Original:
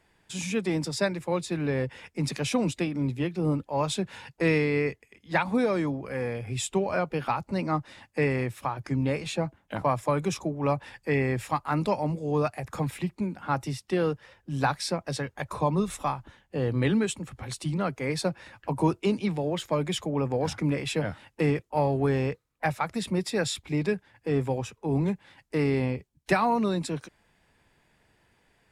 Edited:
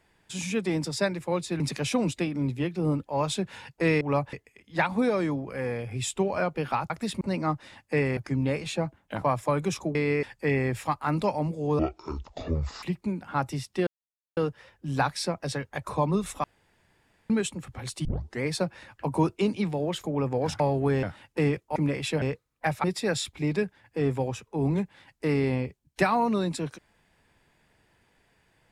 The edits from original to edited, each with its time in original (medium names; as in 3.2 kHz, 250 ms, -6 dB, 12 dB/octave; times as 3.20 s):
1.60–2.20 s: delete
4.61–4.89 s: swap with 10.55–10.87 s
8.42–8.77 s: delete
12.43–12.97 s: speed 52%
14.01 s: insert silence 0.50 s
16.08–16.94 s: room tone
17.69 s: tape start 0.36 s
19.68–20.03 s: delete
20.59–21.05 s: swap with 21.78–22.21 s
22.83–23.14 s: move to 7.46 s